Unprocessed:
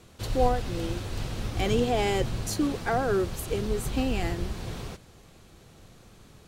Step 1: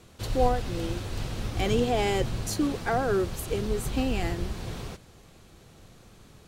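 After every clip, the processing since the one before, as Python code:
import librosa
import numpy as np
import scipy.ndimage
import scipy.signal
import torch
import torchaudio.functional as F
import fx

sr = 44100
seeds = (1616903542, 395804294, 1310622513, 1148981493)

y = x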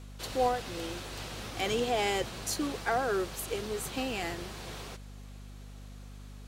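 y = fx.highpass(x, sr, hz=600.0, slope=6)
y = fx.add_hum(y, sr, base_hz=50, snr_db=12)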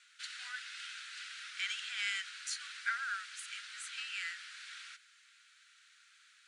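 y = scipy.signal.sosfilt(scipy.signal.cheby1(5, 1.0, [1400.0, 9800.0], 'bandpass', fs=sr, output='sos'), x)
y = fx.high_shelf(y, sr, hz=3400.0, db=-10.0)
y = F.gain(torch.from_numpy(y), 3.0).numpy()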